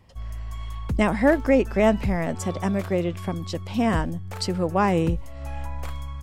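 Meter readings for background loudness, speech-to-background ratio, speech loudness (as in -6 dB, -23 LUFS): -34.5 LUFS, 10.5 dB, -24.0 LUFS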